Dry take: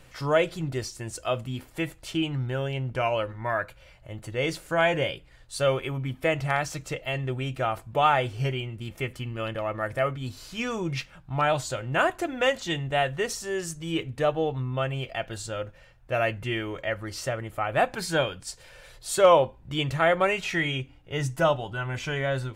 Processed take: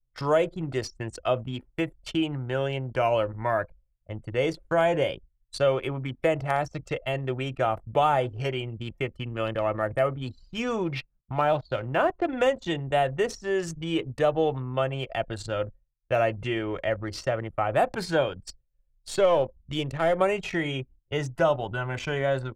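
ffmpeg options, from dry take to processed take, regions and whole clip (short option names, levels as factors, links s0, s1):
-filter_complex "[0:a]asettb=1/sr,asplit=3[s0][s1][s2];[s0]atrim=end=10.854[s3];[s1]atrim=start=10.85:end=12.33,asetpts=PTS-STARTPTS,afade=t=in:d=0.004:c=qsin,afade=t=out:st=1.476:d=0.004:c=qsin,lowpass=f=4400:w=0.5412,lowpass=f=4400:w=1.3066,aeval=exprs='sgn(val(0))*max(abs(val(0))-0.002,0)':c=same[s4];[s2]atrim=start=12.326[s5];[s3][s4]acrossfade=d=0.004:c1=hsin:c2=qsin[s6];[s6][s5]acrossfade=d=0.004:c1=qsin:c2=hsin,asettb=1/sr,asplit=3[s7][s8][s9];[s7]atrim=end=16.154[s10];[s8]atrim=start=16.15:end=16.59,asetpts=PTS-STARTPTS,afade=t=in:d=0.004:c=qsin,afade=t=out:st=0.436:d=0.004:c=qsin,lowpass=7800,acrossover=split=2900[s11][s12];[s12]acompressor=threshold=0.00794:ratio=4:attack=1:release=60[s13];[s11][s13]amix=inputs=2:normalize=0,highshelf=f=2700:g=6[s14];[s9]atrim=start=16.586[s15];[s10][s14]acrossfade=d=0.004:c1=hsin:c2=qsin[s16];[s16][s15]acrossfade=d=0.004:c1=qsin:c2=hsin,asettb=1/sr,asplit=3[s17][s18][s19];[s17]atrim=end=18.434[s20];[s18]atrim=start=18.43:end=20.19,asetpts=PTS-STARTPTS,afade=t=in:d=0.004:c=qsin,afade=t=out:st=1.756:d=0.004:c=qsin,aeval=exprs='if(lt(val(0),0),0.708*val(0),val(0))':c=same,equalizer=f=1100:w=1.1:g=-5[s21];[s19]atrim=start=20.186[s22];[s20][s21]acrossfade=d=0.004:c1=hsin:c2=qsin[s23];[s23][s22]acrossfade=d=0.004:c1=qsin:c2=hsin,agate=range=0.0224:threshold=0.01:ratio=3:detection=peak,acrossover=split=310|1000|5700[s24][s25][s26][s27];[s24]acompressor=threshold=0.0126:ratio=4[s28];[s25]acompressor=threshold=0.0631:ratio=4[s29];[s26]acompressor=threshold=0.0112:ratio=4[s30];[s27]acompressor=threshold=0.00251:ratio=4[s31];[s28][s29][s30][s31]amix=inputs=4:normalize=0,anlmdn=0.398,volume=1.68"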